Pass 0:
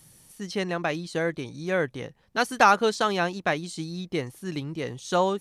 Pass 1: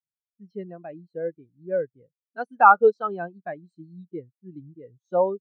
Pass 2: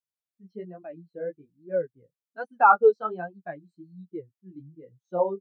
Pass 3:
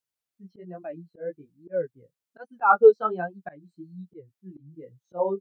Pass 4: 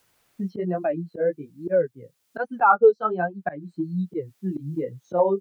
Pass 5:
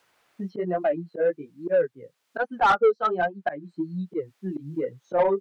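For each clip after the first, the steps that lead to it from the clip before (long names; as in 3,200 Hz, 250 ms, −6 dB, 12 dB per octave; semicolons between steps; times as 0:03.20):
every bin expanded away from the loudest bin 2.5 to 1; level +4.5 dB
flanger 1.2 Hz, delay 8.6 ms, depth 8.2 ms, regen −3%
volume swells 175 ms; level +4 dB
multiband upward and downward compressor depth 70%; level +7.5 dB
mid-hump overdrive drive 18 dB, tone 2,000 Hz, clips at −4.5 dBFS; level −6 dB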